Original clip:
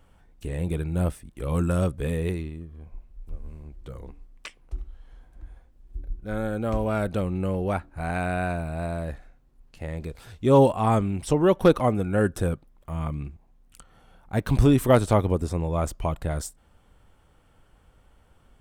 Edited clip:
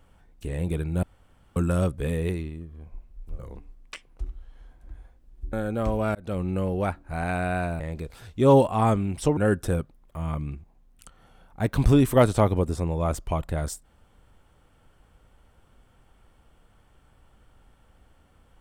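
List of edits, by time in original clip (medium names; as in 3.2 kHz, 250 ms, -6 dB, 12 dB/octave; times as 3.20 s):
1.03–1.56 s: room tone
3.39–3.91 s: delete
6.05–6.40 s: delete
7.02–7.28 s: fade in
8.67–9.85 s: delete
11.42–12.10 s: delete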